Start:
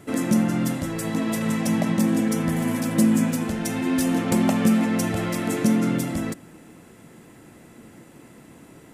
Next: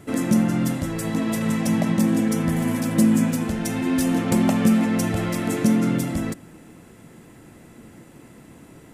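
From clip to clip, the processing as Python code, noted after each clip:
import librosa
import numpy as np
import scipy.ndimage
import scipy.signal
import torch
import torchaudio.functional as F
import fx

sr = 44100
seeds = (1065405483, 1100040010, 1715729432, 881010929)

y = fx.low_shelf(x, sr, hz=110.0, db=6.5)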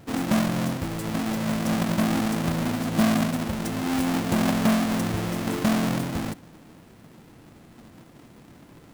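y = fx.halfwave_hold(x, sr)
y = F.gain(torch.from_numpy(y), -8.0).numpy()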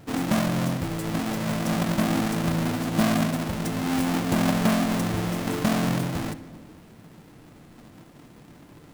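y = fx.room_shoebox(x, sr, seeds[0], volume_m3=1800.0, walls='mixed', distance_m=0.43)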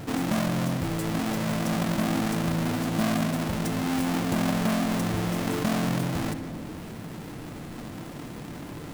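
y = fx.env_flatten(x, sr, amount_pct=50)
y = F.gain(torch.from_numpy(y), -5.0).numpy()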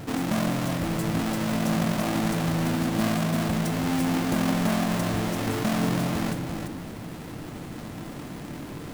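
y = x + 10.0 ** (-5.5 / 20.0) * np.pad(x, (int(341 * sr / 1000.0), 0))[:len(x)]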